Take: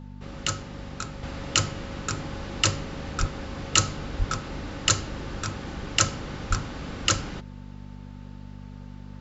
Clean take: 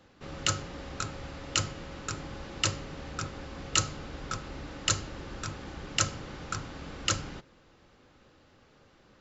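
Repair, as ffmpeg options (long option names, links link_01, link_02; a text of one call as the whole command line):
ffmpeg -i in.wav -filter_complex "[0:a]bandreject=frequency=49.2:width_type=h:width=4,bandreject=frequency=98.4:width_type=h:width=4,bandreject=frequency=147.6:width_type=h:width=4,bandreject=frequency=196.8:width_type=h:width=4,bandreject=frequency=246:width_type=h:width=4,bandreject=frequency=890:width=30,asplit=3[link_01][link_02][link_03];[link_01]afade=type=out:start_time=3.19:duration=0.02[link_04];[link_02]highpass=frequency=140:width=0.5412,highpass=frequency=140:width=1.3066,afade=type=in:start_time=3.19:duration=0.02,afade=type=out:start_time=3.31:duration=0.02[link_05];[link_03]afade=type=in:start_time=3.31:duration=0.02[link_06];[link_04][link_05][link_06]amix=inputs=3:normalize=0,asplit=3[link_07][link_08][link_09];[link_07]afade=type=out:start_time=4.18:duration=0.02[link_10];[link_08]highpass=frequency=140:width=0.5412,highpass=frequency=140:width=1.3066,afade=type=in:start_time=4.18:duration=0.02,afade=type=out:start_time=4.3:duration=0.02[link_11];[link_09]afade=type=in:start_time=4.3:duration=0.02[link_12];[link_10][link_11][link_12]amix=inputs=3:normalize=0,asplit=3[link_13][link_14][link_15];[link_13]afade=type=out:start_time=6.49:duration=0.02[link_16];[link_14]highpass=frequency=140:width=0.5412,highpass=frequency=140:width=1.3066,afade=type=in:start_time=6.49:duration=0.02,afade=type=out:start_time=6.61:duration=0.02[link_17];[link_15]afade=type=in:start_time=6.61:duration=0.02[link_18];[link_16][link_17][link_18]amix=inputs=3:normalize=0,asetnsamples=nb_out_samples=441:pad=0,asendcmd='1.23 volume volume -5.5dB',volume=0dB" out.wav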